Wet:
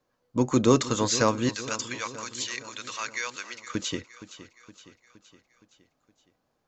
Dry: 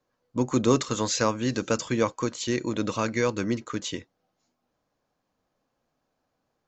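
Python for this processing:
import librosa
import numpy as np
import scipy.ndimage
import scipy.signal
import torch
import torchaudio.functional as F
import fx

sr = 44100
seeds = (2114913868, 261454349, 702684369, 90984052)

y = fx.highpass(x, sr, hz=1500.0, slope=12, at=(1.49, 3.75))
y = fx.echo_feedback(y, sr, ms=467, feedback_pct=55, wet_db=-15.0)
y = F.gain(torch.from_numpy(y), 1.5).numpy()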